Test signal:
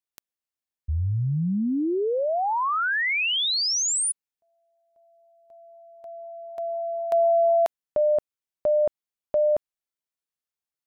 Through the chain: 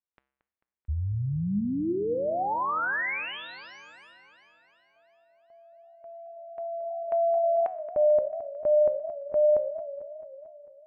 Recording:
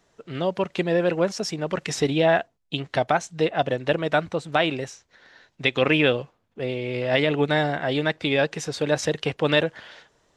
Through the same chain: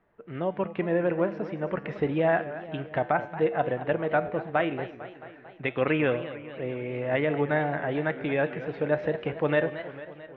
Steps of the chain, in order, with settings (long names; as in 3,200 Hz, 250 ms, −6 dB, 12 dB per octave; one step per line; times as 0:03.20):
low-pass filter 2,200 Hz 24 dB per octave
tuned comb filter 67 Hz, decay 0.65 s, harmonics odd, mix 60%
feedback echo with a swinging delay time 222 ms, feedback 65%, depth 185 cents, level −14 dB
level +3 dB